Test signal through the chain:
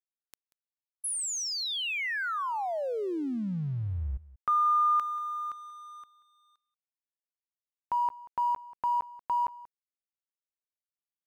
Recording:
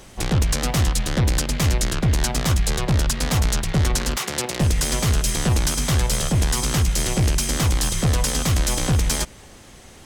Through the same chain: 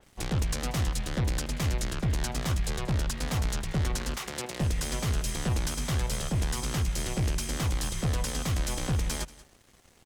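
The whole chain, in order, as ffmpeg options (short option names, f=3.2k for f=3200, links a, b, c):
-af "aeval=exprs='sgn(val(0))*max(abs(val(0))-0.00501,0)':c=same,aecho=1:1:185:0.106,adynamicequalizer=threshold=0.0158:dfrequency=3800:dqfactor=0.7:tfrequency=3800:tqfactor=0.7:attack=5:release=100:ratio=0.375:range=1.5:mode=cutabove:tftype=highshelf,volume=-8.5dB"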